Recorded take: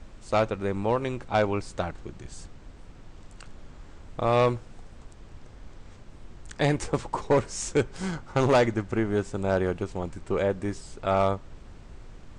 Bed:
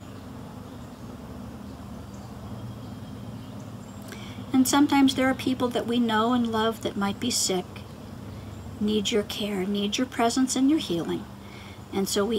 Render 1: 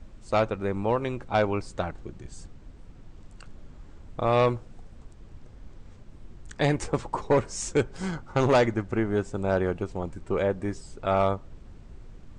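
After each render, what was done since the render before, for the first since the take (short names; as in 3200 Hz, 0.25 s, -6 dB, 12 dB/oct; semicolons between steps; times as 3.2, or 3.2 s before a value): denoiser 6 dB, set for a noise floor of -48 dBFS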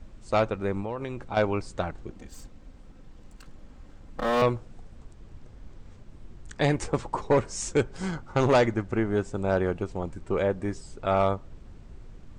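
0.8–1.37 compressor, threshold -28 dBFS; 2.1–4.42 minimum comb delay 3.8 ms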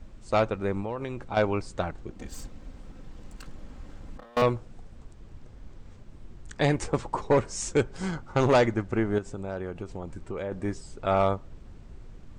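2.19–4.37 negative-ratio compressor -40 dBFS; 9.18–10.52 compressor 3:1, threshold -32 dBFS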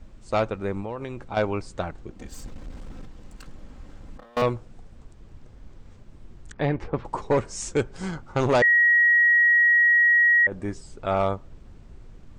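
2.45–3.06 sample leveller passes 2; 6.52–7.05 air absorption 330 m; 8.62–10.47 bleep 1900 Hz -14.5 dBFS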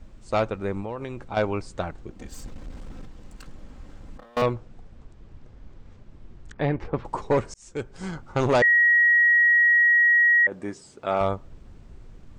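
4.46–6.85 air absorption 68 m; 7.54–8.45 fade in equal-power; 9.83–11.21 Bessel high-pass 210 Hz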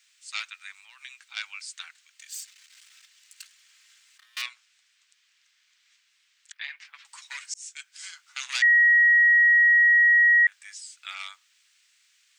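inverse Chebyshev high-pass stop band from 420 Hz, stop band 70 dB; high shelf 2800 Hz +10 dB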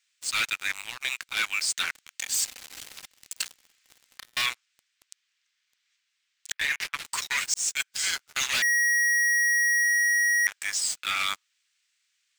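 sample leveller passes 5; reverse; compressor 6:1, threshold -24 dBFS, peak gain reduction 9 dB; reverse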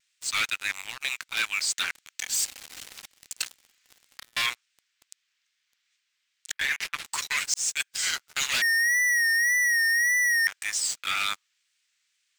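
wow and flutter 69 cents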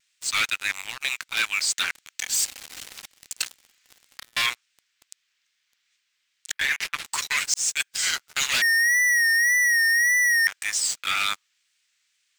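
gain +3 dB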